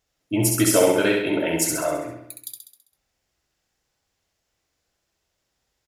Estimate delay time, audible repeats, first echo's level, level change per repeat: 66 ms, 6, −3.5 dB, −5.5 dB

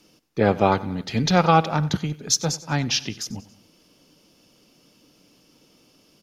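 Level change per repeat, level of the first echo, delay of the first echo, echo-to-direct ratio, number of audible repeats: −5.0 dB, −19.0 dB, 93 ms, −17.5 dB, 3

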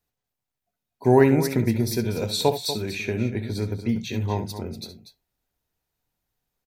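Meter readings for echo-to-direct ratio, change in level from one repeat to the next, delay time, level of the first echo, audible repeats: −8.5 dB, repeats not evenly spaced, 67 ms, −11.5 dB, 2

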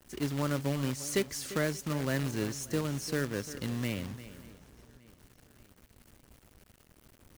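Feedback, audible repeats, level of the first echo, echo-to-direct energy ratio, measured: repeats not evenly spaced, 4, −14.5 dB, −13.5 dB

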